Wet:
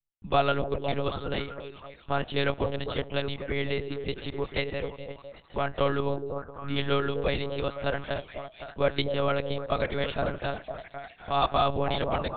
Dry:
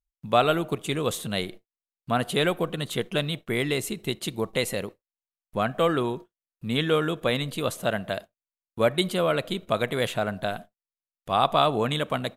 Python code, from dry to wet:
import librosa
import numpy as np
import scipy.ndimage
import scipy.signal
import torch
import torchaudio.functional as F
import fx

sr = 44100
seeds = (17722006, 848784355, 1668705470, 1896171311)

y = fx.echo_stepped(x, sr, ms=255, hz=420.0, octaves=0.7, feedback_pct=70, wet_db=-4.5)
y = fx.lpc_monotone(y, sr, seeds[0], pitch_hz=140.0, order=10)
y = F.gain(torch.from_numpy(y), -3.0).numpy()